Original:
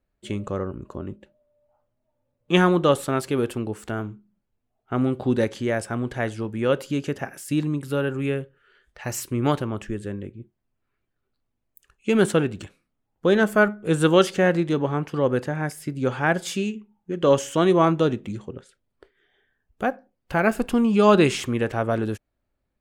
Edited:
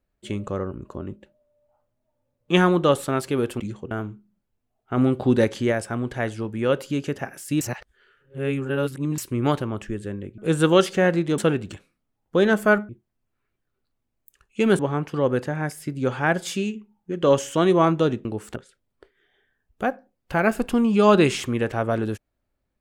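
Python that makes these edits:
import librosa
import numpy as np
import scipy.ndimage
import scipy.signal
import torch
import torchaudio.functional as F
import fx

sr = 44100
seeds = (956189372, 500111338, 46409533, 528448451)

y = fx.edit(x, sr, fx.swap(start_s=3.6, length_s=0.31, other_s=18.25, other_length_s=0.31),
    fx.clip_gain(start_s=4.97, length_s=0.75, db=3.0),
    fx.reverse_span(start_s=7.61, length_s=1.57),
    fx.swap(start_s=10.38, length_s=1.9, other_s=13.79, other_length_s=1.0), tone=tone)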